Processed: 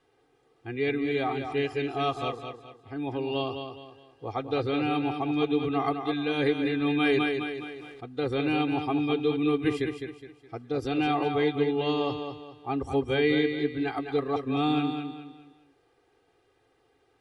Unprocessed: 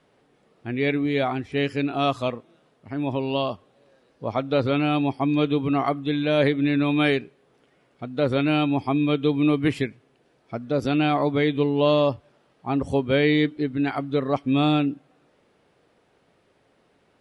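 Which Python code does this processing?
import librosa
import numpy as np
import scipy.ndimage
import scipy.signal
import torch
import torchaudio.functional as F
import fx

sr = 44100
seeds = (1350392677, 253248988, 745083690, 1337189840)

p1 = x + 0.89 * np.pad(x, (int(2.5 * sr / 1000.0), 0))[:len(x)]
p2 = p1 + fx.echo_feedback(p1, sr, ms=208, feedback_pct=35, wet_db=-7, dry=0)
p3 = fx.sustainer(p2, sr, db_per_s=29.0, at=(6.86, 8.04))
y = p3 * librosa.db_to_amplitude(-7.5)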